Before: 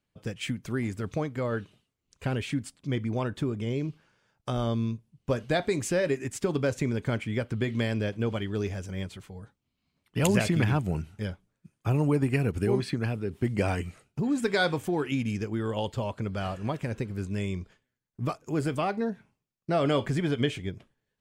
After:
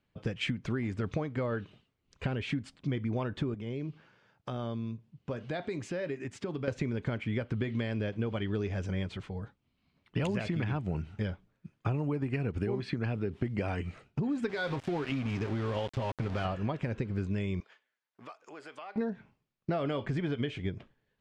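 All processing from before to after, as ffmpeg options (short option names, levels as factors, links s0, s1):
-filter_complex "[0:a]asettb=1/sr,asplit=3[s0][s1][s2];[s0]atrim=end=3.544[s3];[s1]atrim=start=3.54:end=6.68,asetpts=PTS-STARTPTS,afade=t=in:d=0.004:c=qsin,afade=t=out:st=3.136:d=0.004:c=qsin,highpass=85,acompressor=threshold=0.00501:ratio=2:attack=3.2:release=140:knee=1:detection=peak[s4];[s2]atrim=start=6.676[s5];[s3][s4]acrossfade=d=0.004:c1=hsin:c2=qsin[s6];[s6][s5]acrossfade=d=0.004:c1=qsin:c2=hsin,asettb=1/sr,asplit=3[s7][s8][s9];[s7]atrim=end=14.494[s10];[s8]atrim=start=14.49:end=16.45,asetpts=PTS-STARTPTS,afade=t=in:d=0.004:c=qsin,afade=t=out:st=1.956:d=0.004:c=qsin,aecho=1:1:7.5:0.38,atrim=end_sample=86436,acompressor=threshold=0.0282:ratio=3:attack=3.2:release=140:knee=1:detection=peak,aeval=exprs='val(0)*gte(abs(val(0)),0.0112)':c=same[s11];[s9]atrim=start=16.446[s12];[s10][s11]acrossfade=d=0.004:c1=hsin:c2=qsin[s13];[s13][s12]acrossfade=d=0.004:c1=qsin:c2=hsin,asettb=1/sr,asplit=3[s14][s15][s16];[s14]atrim=end=17.604[s17];[s15]atrim=start=17.6:end=18.96,asetpts=PTS-STARTPTS,afade=t=in:d=0.004:c=qsin,afade=t=out:st=1.356:d=0.004:c=qsin,highpass=730,acompressor=threshold=0.00251:ratio=3:attack=3.2:release=140:knee=1:detection=peak[s18];[s16]atrim=start=18.956[s19];[s17][s18]acrossfade=d=0.004:c1=hsin:c2=qsin[s20];[s20][s19]acrossfade=d=0.004:c1=qsin:c2=hsin,lowpass=3800,acompressor=threshold=0.0224:ratio=10,volume=1.68"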